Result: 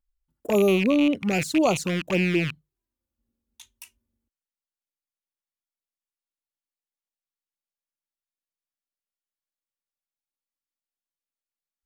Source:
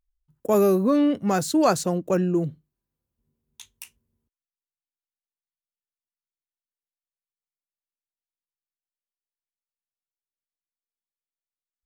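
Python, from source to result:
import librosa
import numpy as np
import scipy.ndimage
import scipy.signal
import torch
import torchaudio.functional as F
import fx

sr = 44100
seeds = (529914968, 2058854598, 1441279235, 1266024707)

y = fx.rattle_buzz(x, sr, strikes_db=-37.0, level_db=-15.0)
y = fx.env_flanger(y, sr, rest_ms=3.6, full_db=-16.0)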